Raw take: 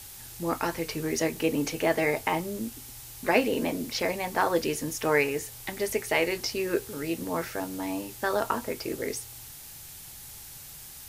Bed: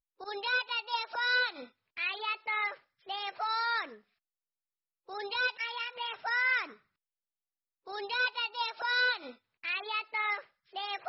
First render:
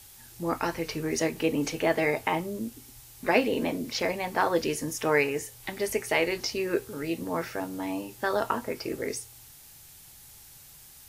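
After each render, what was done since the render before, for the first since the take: noise print and reduce 6 dB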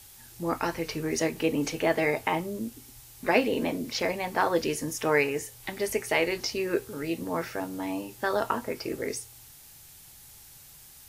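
no audible change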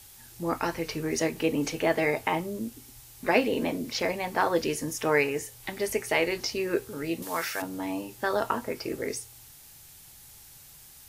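7.22–7.62 s: tilt shelf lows -10 dB, about 790 Hz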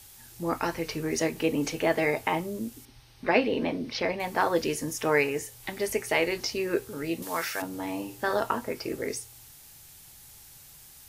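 2.85–4.20 s: Savitzky-Golay filter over 15 samples; 7.68–8.40 s: flutter echo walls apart 8.7 m, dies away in 0.32 s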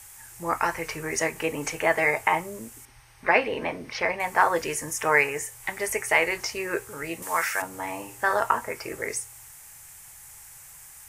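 graphic EQ 250/1000/2000/4000/8000 Hz -9/+6/+8/-9/+9 dB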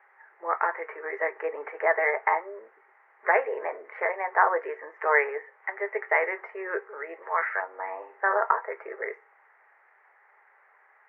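Chebyshev band-pass 400–2000 Hz, order 4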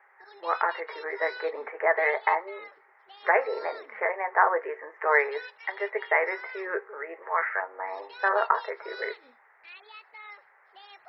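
add bed -13.5 dB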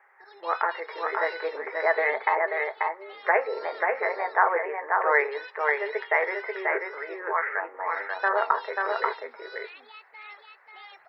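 delay 537 ms -3.5 dB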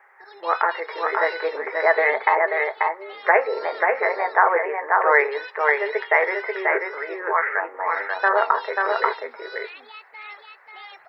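trim +5.5 dB; peak limiter -3 dBFS, peak gain reduction 2.5 dB

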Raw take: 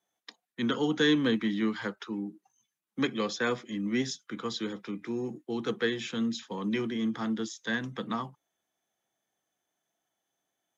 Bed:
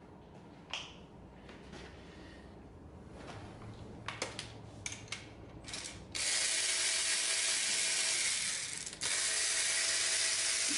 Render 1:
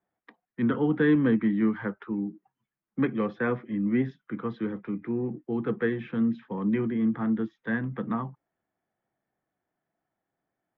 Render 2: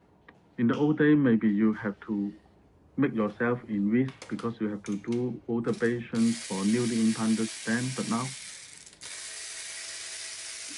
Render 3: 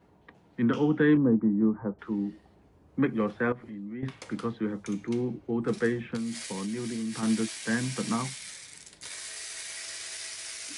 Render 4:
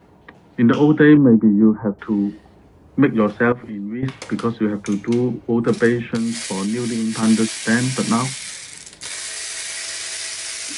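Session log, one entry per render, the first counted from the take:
low-pass 2.1 kHz 24 dB/octave; bass shelf 220 Hz +10.5 dB
add bed -6.5 dB
1.17–1.99 s: low-pass 1 kHz 24 dB/octave; 3.52–4.03 s: compression 3:1, threshold -40 dBFS; 6.16–7.23 s: compression, threshold -30 dBFS
trim +11 dB

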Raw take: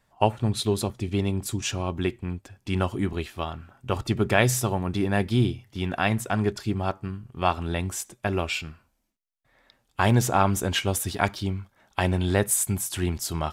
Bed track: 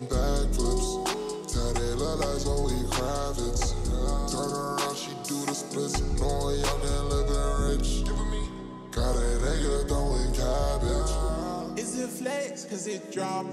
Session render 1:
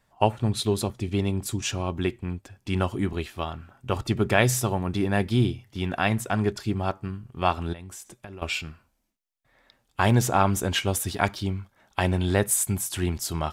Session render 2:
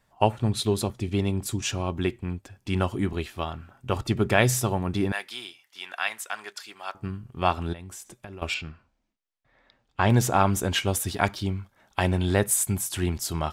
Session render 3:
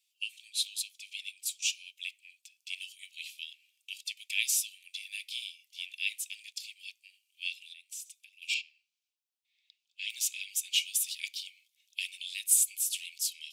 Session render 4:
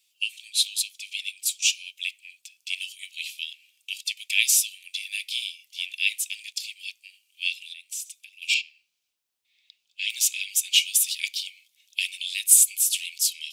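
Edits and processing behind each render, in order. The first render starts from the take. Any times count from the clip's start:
7.73–8.42 s: compression 12:1, threshold -37 dBFS
5.12–6.95 s: high-pass 1.2 kHz; 8.54–10.10 s: distance through air 110 m
steep high-pass 2.4 kHz 72 dB/octave
trim +9 dB

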